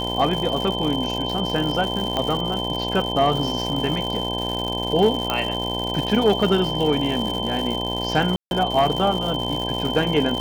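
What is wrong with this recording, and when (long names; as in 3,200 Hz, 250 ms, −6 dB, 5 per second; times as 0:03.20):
mains buzz 60 Hz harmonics 17 −28 dBFS
surface crackle 200 per second −26 dBFS
whistle 3,100 Hz −27 dBFS
0:02.17: click −10 dBFS
0:05.30: click −7 dBFS
0:08.36–0:08.51: drop-out 151 ms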